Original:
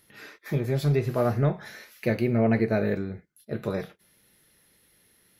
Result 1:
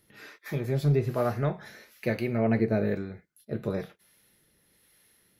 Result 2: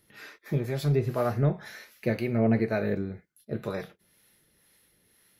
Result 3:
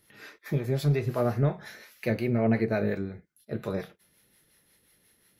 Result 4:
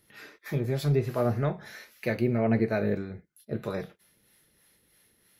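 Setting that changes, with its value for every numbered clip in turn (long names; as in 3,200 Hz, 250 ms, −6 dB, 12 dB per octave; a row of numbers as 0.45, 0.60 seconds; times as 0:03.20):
two-band tremolo in antiphase, speed: 1.1, 2, 5.6, 3.1 Hertz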